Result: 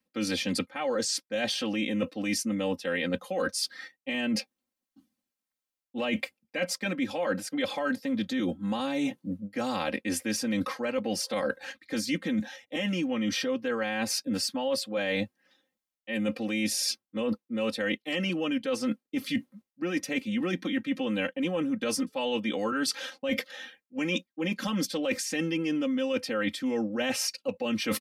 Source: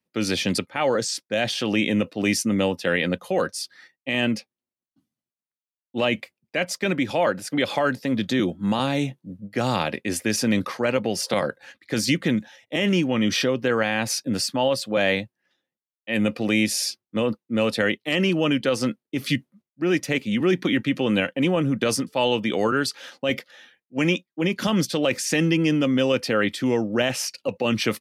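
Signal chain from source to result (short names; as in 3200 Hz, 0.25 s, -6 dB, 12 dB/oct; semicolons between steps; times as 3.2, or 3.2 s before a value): comb 3.8 ms, depth 93%; reverse; compressor 6:1, threshold -30 dBFS, peak gain reduction 16.5 dB; reverse; gain +2.5 dB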